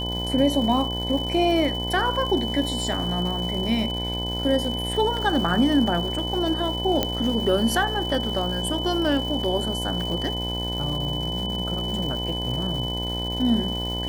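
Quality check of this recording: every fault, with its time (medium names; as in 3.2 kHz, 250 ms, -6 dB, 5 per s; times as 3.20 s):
buzz 60 Hz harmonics 17 -30 dBFS
crackle 370 per s -32 dBFS
whine 3 kHz -29 dBFS
7.03 s: pop -7 dBFS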